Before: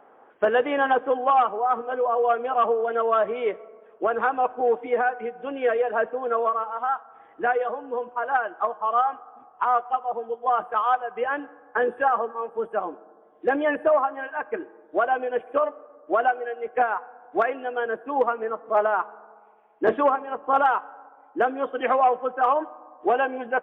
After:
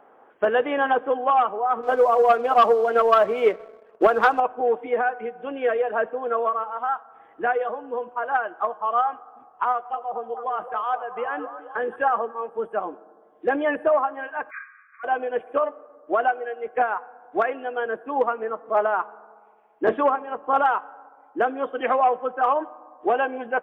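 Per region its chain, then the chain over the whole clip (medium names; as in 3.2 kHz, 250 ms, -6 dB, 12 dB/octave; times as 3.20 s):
1.83–4.40 s: transient shaper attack +7 dB, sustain 0 dB + waveshaping leveller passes 1
9.72–11.96 s: compression 1.5:1, threshold -29 dBFS + repeats whose band climbs or falls 216 ms, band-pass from 510 Hz, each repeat 0.7 oct, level -6 dB
14.49–15.03 s: formants flattened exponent 0.6 + compressor with a negative ratio -31 dBFS + brick-wall FIR band-pass 1.1–2.5 kHz
whole clip: none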